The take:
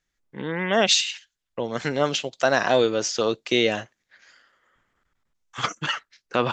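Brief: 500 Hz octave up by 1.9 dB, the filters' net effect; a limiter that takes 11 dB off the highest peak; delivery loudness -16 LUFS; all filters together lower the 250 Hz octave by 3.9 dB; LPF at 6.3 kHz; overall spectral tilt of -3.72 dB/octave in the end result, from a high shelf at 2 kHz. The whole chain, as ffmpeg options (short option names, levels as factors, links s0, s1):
-af "lowpass=6300,equalizer=f=250:t=o:g=-7.5,equalizer=f=500:t=o:g=4.5,highshelf=f=2000:g=-6,volume=4.73,alimiter=limit=0.631:level=0:latency=1"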